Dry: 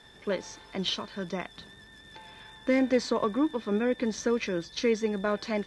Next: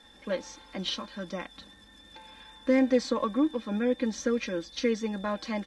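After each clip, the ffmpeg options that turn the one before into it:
-af "aecho=1:1:3.7:0.83,volume=-3.5dB"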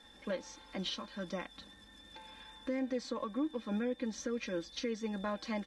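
-af "alimiter=limit=-24dB:level=0:latency=1:release=403,volume=-3dB"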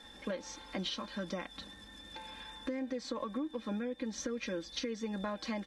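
-af "acompressor=threshold=-39dB:ratio=6,volume=5dB"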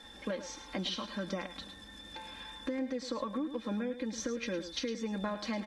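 -af "aecho=1:1:107:0.266,volume=1.5dB"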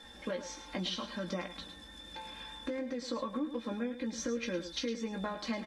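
-filter_complex "[0:a]asplit=2[a][b];[b]adelay=17,volume=-6.5dB[c];[a][c]amix=inputs=2:normalize=0,volume=-1dB"

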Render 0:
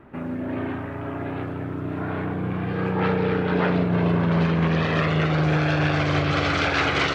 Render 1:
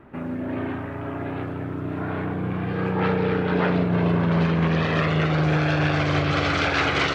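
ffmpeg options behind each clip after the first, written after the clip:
-af anull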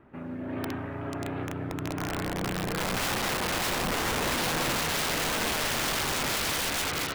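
-af "dynaudnorm=f=120:g=9:m=4dB,aeval=exprs='(mod(6.31*val(0)+1,2)-1)/6.31':c=same,volume=-8dB"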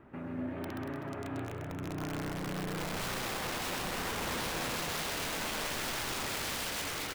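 -filter_complex "[0:a]alimiter=level_in=9.5dB:limit=-24dB:level=0:latency=1:release=59,volume=-9.5dB,asplit=2[a][b];[b]aecho=0:1:130|234|317.2|383.8|437:0.631|0.398|0.251|0.158|0.1[c];[a][c]amix=inputs=2:normalize=0"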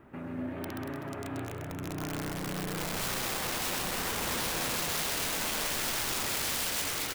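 -af "highshelf=f=5.4k:g=8,volume=1dB"

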